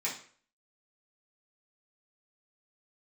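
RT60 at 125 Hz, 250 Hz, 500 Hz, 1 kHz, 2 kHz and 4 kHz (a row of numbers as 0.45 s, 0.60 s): 0.45 s, 0.45 s, 0.50 s, 0.45 s, 0.45 s, 0.40 s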